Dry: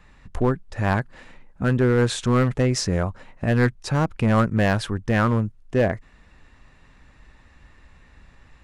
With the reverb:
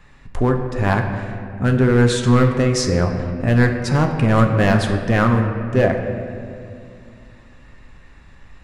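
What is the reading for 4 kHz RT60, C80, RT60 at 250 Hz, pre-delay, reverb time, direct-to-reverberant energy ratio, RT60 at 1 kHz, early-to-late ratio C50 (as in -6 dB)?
1.4 s, 7.0 dB, 3.4 s, 7 ms, 2.4 s, 3.5 dB, 2.1 s, 6.0 dB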